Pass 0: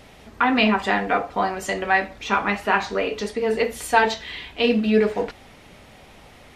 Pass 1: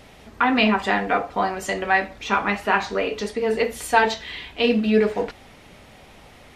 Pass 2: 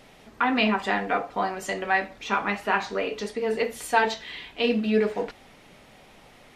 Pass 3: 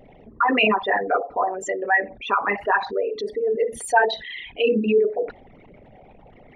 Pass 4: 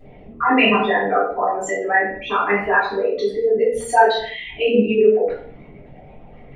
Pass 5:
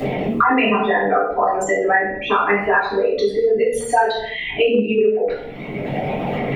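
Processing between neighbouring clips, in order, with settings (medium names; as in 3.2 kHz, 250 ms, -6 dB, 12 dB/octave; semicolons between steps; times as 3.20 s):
no audible change
peaking EQ 69 Hz -13.5 dB 0.69 oct; trim -4 dB
resonances exaggerated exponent 3; trim +4 dB
reverberation, pre-delay 3 ms, DRR -10.5 dB; trim -7 dB
three bands compressed up and down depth 100%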